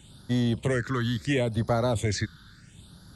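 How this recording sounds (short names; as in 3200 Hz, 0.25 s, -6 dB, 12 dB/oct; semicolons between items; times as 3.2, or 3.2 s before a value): phasing stages 6, 0.73 Hz, lowest notch 640–2500 Hz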